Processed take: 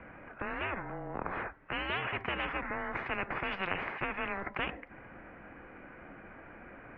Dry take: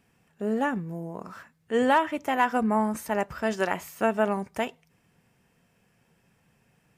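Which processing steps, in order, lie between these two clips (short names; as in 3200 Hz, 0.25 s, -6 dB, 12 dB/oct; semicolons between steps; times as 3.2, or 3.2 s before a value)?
mistuned SSB -190 Hz 290–2300 Hz; spectral compressor 10:1; gain -6 dB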